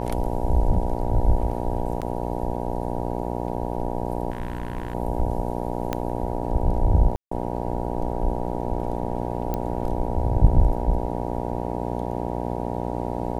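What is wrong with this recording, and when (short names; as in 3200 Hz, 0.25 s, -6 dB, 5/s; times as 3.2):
buzz 60 Hz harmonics 16 -28 dBFS
2.01–2.02 gap 7.3 ms
4.3–4.95 clipped -24 dBFS
5.93 pop -11 dBFS
7.16–7.31 gap 0.154 s
9.54 pop -14 dBFS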